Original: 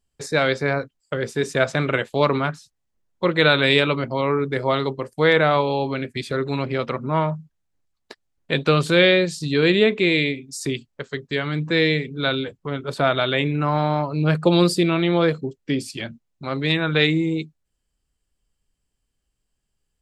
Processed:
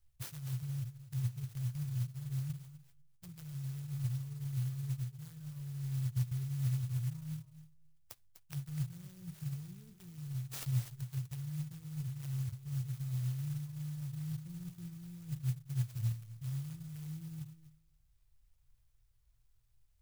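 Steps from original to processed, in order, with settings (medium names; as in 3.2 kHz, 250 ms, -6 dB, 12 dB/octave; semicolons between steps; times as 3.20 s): reverse; compression 4:1, threshold -29 dBFS, peak gain reduction 15 dB; reverse; graphic EQ with 31 bands 125 Hz +8 dB, 500 Hz -12 dB, 3.15 kHz +10 dB, 5 kHz -10 dB, 10 kHz -11 dB; low-pass that closes with the level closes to 1.2 kHz, closed at -27 dBFS; elliptic band-stop 110–5100 Hz, stop band 40 dB; thinning echo 249 ms, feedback 16%, high-pass 310 Hz, level -8 dB; on a send at -19.5 dB: reverberation RT60 0.55 s, pre-delay 4 ms; on the sum: sampling jitter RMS 0.12 ms; trim +5.5 dB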